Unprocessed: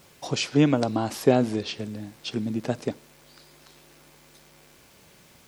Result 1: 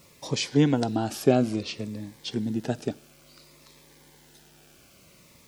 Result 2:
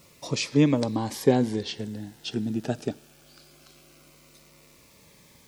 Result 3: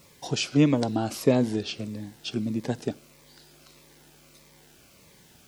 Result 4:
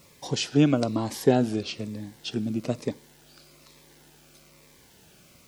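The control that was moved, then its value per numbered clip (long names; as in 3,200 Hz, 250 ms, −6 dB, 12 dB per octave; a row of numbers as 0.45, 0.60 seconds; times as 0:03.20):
phaser whose notches keep moving one way, speed: 0.57, 0.22, 1.6, 1.1 Hertz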